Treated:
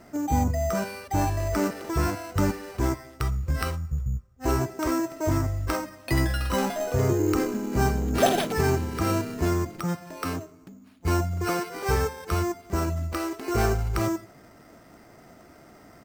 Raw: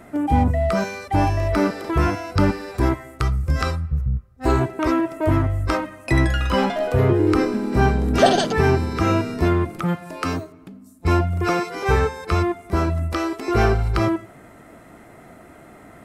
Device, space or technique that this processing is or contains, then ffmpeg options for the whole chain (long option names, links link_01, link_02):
crushed at another speed: -af "asetrate=35280,aresample=44100,acrusher=samples=8:mix=1:aa=0.000001,asetrate=55125,aresample=44100,volume=-6dB"